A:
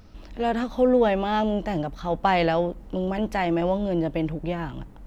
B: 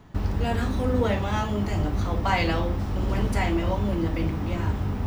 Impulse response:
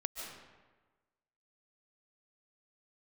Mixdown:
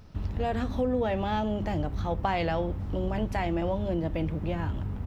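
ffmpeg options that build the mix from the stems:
-filter_complex "[0:a]volume=-3dB[link_01];[1:a]bass=frequency=250:gain=8,treble=frequency=4000:gain=-6,adelay=2.6,volume=-12.5dB[link_02];[link_01][link_02]amix=inputs=2:normalize=0,acompressor=threshold=-25dB:ratio=3"

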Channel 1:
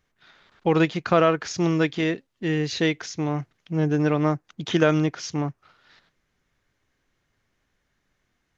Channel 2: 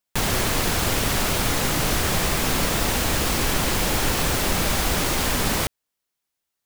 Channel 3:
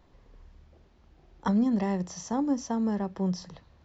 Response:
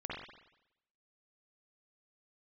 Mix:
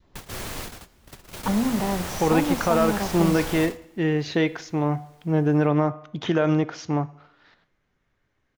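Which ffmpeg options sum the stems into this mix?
-filter_complex "[0:a]highshelf=frequency=4400:gain=-12,alimiter=limit=-13.5dB:level=0:latency=1,adelay=1550,volume=0.5dB,asplit=2[link_01][link_02];[link_02]volume=-19.5dB[link_03];[1:a]volume=-11dB[link_04];[2:a]volume=1dB,asplit=2[link_05][link_06];[link_06]apad=whole_len=293316[link_07];[link_04][link_07]sidechaingate=range=-29dB:threshold=-53dB:ratio=16:detection=peak[link_08];[3:a]atrim=start_sample=2205[link_09];[link_03][link_09]afir=irnorm=-1:irlink=0[link_10];[link_01][link_08][link_05][link_10]amix=inputs=4:normalize=0,bandreject=frequency=245.1:width_type=h:width=4,bandreject=frequency=490.2:width_type=h:width=4,bandreject=frequency=735.3:width_type=h:width=4,bandreject=frequency=980.4:width_type=h:width=4,bandreject=frequency=1225.5:width_type=h:width=4,bandreject=frequency=1470.6:width_type=h:width=4,bandreject=frequency=1715.7:width_type=h:width=4,bandreject=frequency=1960.8:width_type=h:width=4,bandreject=frequency=2205.9:width_type=h:width=4,bandreject=frequency=2451:width_type=h:width=4,bandreject=frequency=2696.1:width_type=h:width=4,bandreject=frequency=2941.2:width_type=h:width=4,bandreject=frequency=3186.3:width_type=h:width=4,bandreject=frequency=3431.4:width_type=h:width=4,bandreject=frequency=3676.5:width_type=h:width=4,bandreject=frequency=3921.6:width_type=h:width=4,bandreject=frequency=4166.7:width_type=h:width=4,bandreject=frequency=4411.8:width_type=h:width=4,bandreject=frequency=4656.9:width_type=h:width=4,bandreject=frequency=4902:width_type=h:width=4,bandreject=frequency=5147.1:width_type=h:width=4,bandreject=frequency=5392.2:width_type=h:width=4,bandreject=frequency=5637.3:width_type=h:width=4,bandreject=frequency=5882.4:width_type=h:width=4,bandreject=frequency=6127.5:width_type=h:width=4,bandreject=frequency=6372.6:width_type=h:width=4,bandreject=frequency=6617.7:width_type=h:width=4,bandreject=frequency=6862.8:width_type=h:width=4,bandreject=frequency=7107.9:width_type=h:width=4,bandreject=frequency=7353:width_type=h:width=4,bandreject=frequency=7598.1:width_type=h:width=4,bandreject=frequency=7843.2:width_type=h:width=4,adynamicequalizer=threshold=0.0141:dfrequency=790:dqfactor=1.2:tfrequency=790:tqfactor=1.2:attack=5:release=100:ratio=0.375:range=2.5:mode=boostabove:tftype=bell"

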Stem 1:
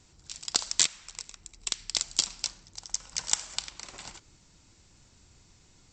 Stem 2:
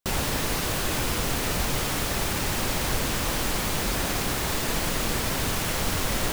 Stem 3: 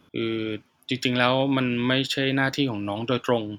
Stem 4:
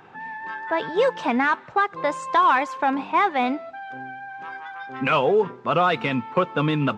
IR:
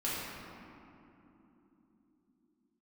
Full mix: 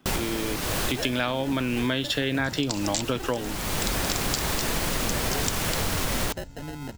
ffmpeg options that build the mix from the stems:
-filter_complex "[0:a]asubboost=boost=9:cutoff=170,adelay=2150,volume=0dB[link_01];[1:a]volume=2.5dB[link_02];[2:a]dynaudnorm=framelen=130:gausssize=9:maxgain=11.5dB,volume=-3dB,asplit=2[link_03][link_04];[3:a]acrusher=samples=38:mix=1:aa=0.000001,volume=-14.5dB[link_05];[link_04]apad=whole_len=278865[link_06];[link_02][link_06]sidechaincompress=threshold=-32dB:ratio=8:attack=37:release=467[link_07];[link_01][link_07][link_03][link_05]amix=inputs=4:normalize=0,acompressor=threshold=-22dB:ratio=6"

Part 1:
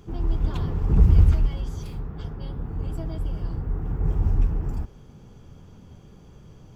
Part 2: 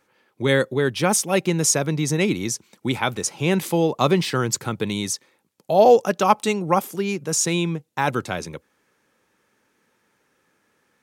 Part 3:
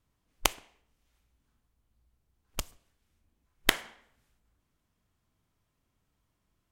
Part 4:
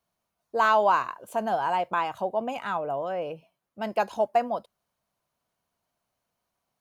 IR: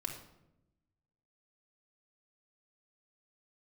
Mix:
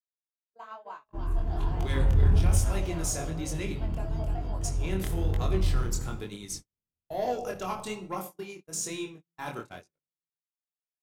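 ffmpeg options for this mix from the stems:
-filter_complex "[0:a]adelay=1050,volume=-0.5dB,asplit=3[link_01][link_02][link_03];[link_02]volume=-7.5dB[link_04];[link_03]volume=-6dB[link_05];[1:a]highshelf=frequency=5800:gain=7.5,adelay=1400,volume=-8dB,asplit=3[link_06][link_07][link_08];[link_06]atrim=end=3.76,asetpts=PTS-STARTPTS,afade=type=out:start_time=3.756:duration=0.004:curve=hsin[link_09];[link_07]atrim=start=3.76:end=4.61,asetpts=PTS-STARTPTS,volume=0[link_10];[link_08]atrim=start=4.61,asetpts=PTS-STARTPTS,afade=type=in:duration=0.004:curve=hsin[link_11];[link_09][link_10][link_11]concat=n=3:v=0:a=1,asplit=2[link_12][link_13];[link_13]volume=-7.5dB[link_14];[2:a]tiltshelf=frequency=970:gain=4.5,adelay=1350,volume=-12dB,asplit=3[link_15][link_16][link_17];[link_16]volume=-9dB[link_18];[link_17]volume=-7dB[link_19];[3:a]acompressor=threshold=-26dB:ratio=4,volume=-6dB,asplit=4[link_20][link_21][link_22][link_23];[link_21]volume=-10dB[link_24];[link_22]volume=-9dB[link_25];[link_23]apad=whole_len=355524[link_26];[link_15][link_26]sidechaincompress=threshold=-46dB:ratio=8:attack=16:release=870[link_27];[link_01][link_12][link_20]amix=inputs=3:normalize=0,asoftclip=type=tanh:threshold=-22.5dB,acompressor=threshold=-42dB:ratio=2,volume=0dB[link_28];[4:a]atrim=start_sample=2205[link_29];[link_04][link_14][link_18][link_24]amix=inputs=4:normalize=0[link_30];[link_30][link_29]afir=irnorm=-1:irlink=0[link_31];[link_05][link_19][link_25]amix=inputs=3:normalize=0,aecho=0:1:300:1[link_32];[link_27][link_28][link_31][link_32]amix=inputs=4:normalize=0,agate=range=-50dB:threshold=-34dB:ratio=16:detection=peak,asoftclip=type=tanh:threshold=-9.5dB,flanger=delay=20:depth=6.1:speed=1.1"

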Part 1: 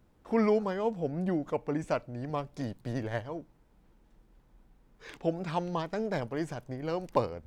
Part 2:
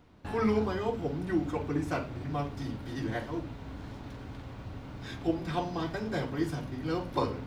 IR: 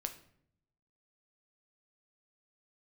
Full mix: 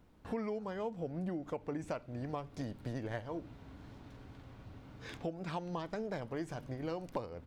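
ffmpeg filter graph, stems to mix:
-filter_complex "[0:a]volume=-2dB,asplit=2[link_01][link_02];[1:a]volume=-1,adelay=1.3,volume=-10dB[link_03];[link_02]apad=whole_len=329430[link_04];[link_03][link_04]sidechaincompress=threshold=-39dB:ratio=4:attack=25:release=436[link_05];[link_01][link_05]amix=inputs=2:normalize=0,acompressor=threshold=-35dB:ratio=6"

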